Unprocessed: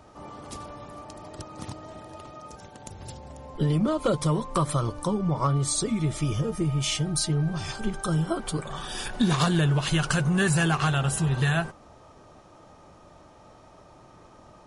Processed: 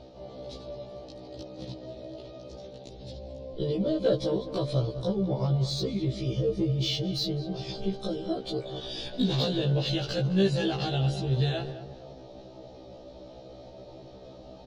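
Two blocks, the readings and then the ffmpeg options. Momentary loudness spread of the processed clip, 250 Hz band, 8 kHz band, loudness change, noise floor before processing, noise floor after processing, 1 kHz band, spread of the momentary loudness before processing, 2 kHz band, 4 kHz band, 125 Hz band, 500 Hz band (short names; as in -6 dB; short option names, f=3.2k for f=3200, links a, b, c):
20 LU, -3.0 dB, -16.5 dB, -3.5 dB, -52 dBFS, -48 dBFS, -9.5 dB, 20 LU, -12.0 dB, 0.0 dB, -3.5 dB, +1.5 dB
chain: -filter_complex "[0:a]firequalizer=gain_entry='entry(190,0);entry(570,6);entry(1100,-16);entry(4000,7);entry(8400,-23)':delay=0.05:min_phase=1,areverse,acompressor=mode=upward:threshold=-36dB:ratio=2.5,areverse,asoftclip=type=tanh:threshold=-11.5dB,asplit=2[a][b];[b]adelay=210,lowpass=f=1.7k:p=1,volume=-11dB,asplit=2[c][d];[d]adelay=210,lowpass=f=1.7k:p=1,volume=0.4,asplit=2[e][f];[f]adelay=210,lowpass=f=1.7k:p=1,volume=0.4,asplit=2[g][h];[h]adelay=210,lowpass=f=1.7k:p=1,volume=0.4[i];[a][c][e][g][i]amix=inputs=5:normalize=0,acrossover=split=5000[j][k];[k]asoftclip=type=hard:threshold=-36dB[l];[j][l]amix=inputs=2:normalize=0,afftfilt=real='re*1.73*eq(mod(b,3),0)':imag='im*1.73*eq(mod(b,3),0)':win_size=2048:overlap=0.75"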